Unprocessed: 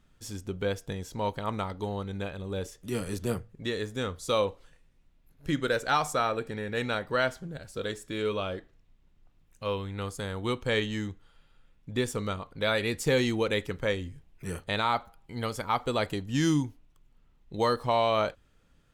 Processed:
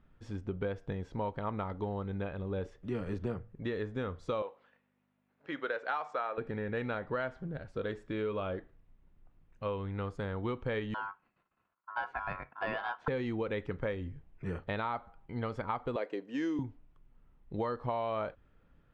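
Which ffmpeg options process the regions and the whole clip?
-filter_complex "[0:a]asettb=1/sr,asplit=3[a][b][c];[a]atrim=end=4.424[d];[b]atrim=start=4.42:end=6.38,asetpts=PTS-STARTPTS,afade=t=in:d=0.004:c=qsin,afade=t=out:st=1.956:d=0.004:c=qsin,aeval=exprs='val(0)+0.00251*(sin(2*PI*50*n/s)+sin(2*PI*2*50*n/s)/2+sin(2*PI*3*50*n/s)/3+sin(2*PI*4*50*n/s)/4+sin(2*PI*5*50*n/s)/5)':c=same,highpass=540,lowpass=5.5k[e];[c]atrim=start=6.376[f];[d][e]acrossfade=d=0.004:c1=hsin:c2=qsin[g];[g][f]acrossfade=d=0.004:c1=qsin:c2=hsin,asettb=1/sr,asplit=3[h][i][j];[h]atrim=end=10.944[k];[i]atrim=start=10.94:end=13.08,asetpts=PTS-STARTPTS,afade=t=in:d=0.004:c=qsin,afade=t=out:st=2.136:d=0.004:c=qsin,agate=range=-33dB:threshold=-54dB:ratio=3:release=100:detection=peak,highpass=110,lowpass=2.7k,aeval=exprs='val(0)*sin(2*PI*1200*n/s)':c=same[l];[j]atrim=start=13.076[m];[k][l]acrossfade=d=0.004:c1=hsin:c2=qsin[n];[n][m]acrossfade=d=0.004:c1=qsin:c2=hsin,asettb=1/sr,asplit=3[o][p][q];[o]atrim=end=15.964[r];[p]atrim=start=15.96:end=16.59,asetpts=PTS-STARTPTS,afade=t=in:d=0.004:c=qsin,afade=t=out:st=0.626:d=0.004:c=qsin,highpass=f=290:w=0.5412,highpass=f=290:w=1.3066,equalizer=f=490:t=q:w=4:g=5,equalizer=f=820:t=q:w=4:g=-6,equalizer=f=1.3k:t=q:w=4:g=-6,equalizer=f=3.5k:t=q:w=4:g=-5,equalizer=f=6.6k:t=q:w=4:g=6,lowpass=f=9.5k:w=0.5412,lowpass=f=9.5k:w=1.3066,bandreject=f=6.9k:w=10[s];[q]atrim=start=16.586[t];[r][s]acrossfade=d=0.004:c1=hsin:c2=qsin[u];[u][t]acrossfade=d=0.004:c1=qsin:c2=hsin,lowpass=1.9k,acompressor=threshold=-31dB:ratio=6"

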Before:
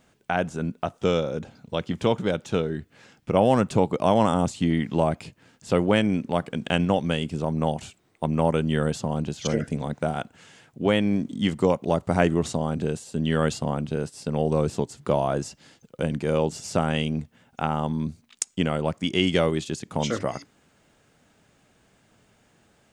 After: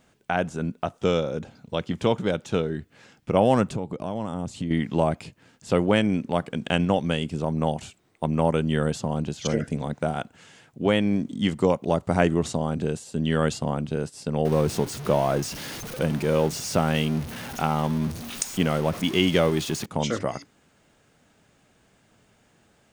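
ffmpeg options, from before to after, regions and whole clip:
-filter_complex "[0:a]asettb=1/sr,asplit=3[a][b][c];[a]atrim=end=3.674[d];[b]atrim=start=3.67:end=4.71,asetpts=PTS-STARTPTS,afade=t=in:d=0.004:c=qsin,afade=t=out:st=1.036:d=0.004:c=qsin,acompressor=threshold=-36dB:ratio=2.5:attack=3.2:release=140:knee=1:detection=peak,lowshelf=f=400:g=7[e];[c]atrim=start=4.706[f];[d][e]acrossfade=d=0.004:c1=hsin:c2=qsin[g];[g][f]acrossfade=d=0.004:c1=qsin:c2=hsin,asettb=1/sr,asplit=3[h][i][j];[h]atrim=end=14.454[k];[i]atrim=start=14.45:end=19.86,asetpts=PTS-STARTPTS,afade=t=in:d=0.004:c=qsin,afade=t=out:st=5.406:d=0.004:c=qsin,aeval=exprs='val(0)+0.5*0.0299*sgn(val(0))':c=same,bandreject=f=7.5k:w=10[l];[j]atrim=start=19.856[m];[k][l]acrossfade=d=0.004:c1=hsin:c2=qsin[n];[n][m]acrossfade=d=0.004:c1=qsin:c2=hsin"

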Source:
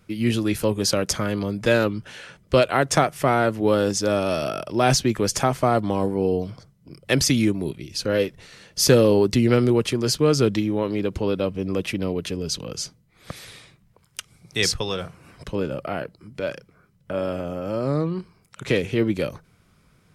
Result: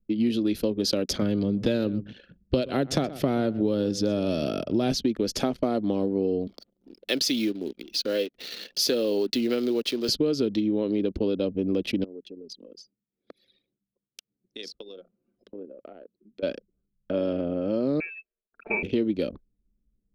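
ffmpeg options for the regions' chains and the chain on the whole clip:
-filter_complex "[0:a]asettb=1/sr,asplit=3[a][b][c];[a]atrim=end=1.224[d];[b]atrim=start=1.22:end=4.92,asetpts=PTS-STARTPTS,afade=t=in:d=0.004:c=qsin,afade=t=out:st=3.696:d=0.004:c=qsin,equalizer=f=120:w=1.1:g=11,aecho=1:1:125:0.106,atrim=end_sample=163170[e];[c]atrim=start=4.916[f];[d][e]acrossfade=d=0.004:c1=hsin:c2=qsin[g];[g][f]acrossfade=d=0.004:c1=qsin:c2=hsin,asettb=1/sr,asplit=3[h][i][j];[h]atrim=end=6.474[k];[i]atrim=start=6.47:end=10.09,asetpts=PTS-STARTPTS,afade=t=in:d=0.004:c=qsin,afade=t=out:st=3.616:d=0.004:c=qsin,acompressor=mode=upward:threshold=-23dB:ratio=2.5:attack=3.2:release=140:knee=2.83:detection=peak,acrusher=bits=7:dc=4:mix=0:aa=0.000001,highpass=f=760:p=1[l];[j]atrim=start=10.086[m];[k][l]acrossfade=d=0.004:c1=hsin:c2=qsin[n];[n][m]acrossfade=d=0.004:c1=qsin:c2=hsin,asettb=1/sr,asplit=3[o][p][q];[o]atrim=end=12.044[r];[p]atrim=start=12.04:end=16.43,asetpts=PTS-STARTPTS,afade=t=in:d=0.004:c=qsin,afade=t=out:st=4.386:d=0.004:c=qsin,acompressor=threshold=-38dB:ratio=3:attack=3.2:release=140:knee=1:detection=peak,highpass=230[s];[q]atrim=start=16.426[t];[r][s]acrossfade=d=0.004:c1=hsin:c2=qsin[u];[u][t]acrossfade=d=0.004:c1=qsin:c2=hsin,asettb=1/sr,asplit=3[v][w][x];[v]atrim=end=18.004[y];[w]atrim=start=18:end=18.83,asetpts=PTS-STARTPTS,afade=t=in:d=0.004:c=qsin,afade=t=out:st=0.826:d=0.004:c=qsin,highpass=f=680:p=1,aecho=1:1:4.2:0.84,atrim=end_sample=36603,lowpass=f=2.4k:t=q:w=0.5098,lowpass=f=2.4k:t=q:w=0.6013,lowpass=f=2.4k:t=q:w=0.9,lowpass=f=2.4k:t=q:w=2.563,afreqshift=-2800[z];[x]atrim=start=18.826[aa];[y][z]acrossfade=d=0.004:c1=hsin:c2=qsin[ab];[ab][aa]acrossfade=d=0.004:c1=qsin:c2=hsin,anlmdn=3.98,equalizer=f=125:t=o:w=1:g=-11,equalizer=f=250:t=o:w=1:g=9,equalizer=f=500:t=o:w=1:g=3,equalizer=f=1k:t=o:w=1:g=-10,equalizer=f=2k:t=o:w=1:g=-6,equalizer=f=4k:t=o:w=1:g=8,equalizer=f=8k:t=o:w=1:g=-12,acompressor=threshold=-21dB:ratio=6"

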